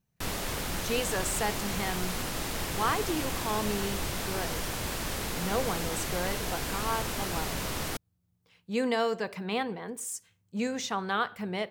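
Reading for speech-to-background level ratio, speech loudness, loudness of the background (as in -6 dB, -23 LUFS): -0.5 dB, -33.5 LUFS, -33.0 LUFS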